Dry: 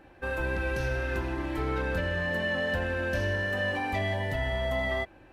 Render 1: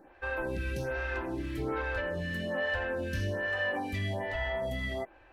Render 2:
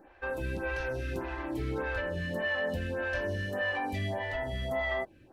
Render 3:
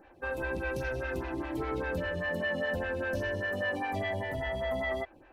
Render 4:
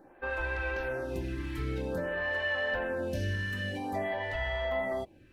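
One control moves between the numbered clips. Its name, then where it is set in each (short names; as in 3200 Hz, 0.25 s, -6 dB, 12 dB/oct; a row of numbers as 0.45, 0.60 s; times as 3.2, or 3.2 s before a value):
photocell phaser, rate: 1.2, 1.7, 5, 0.51 Hz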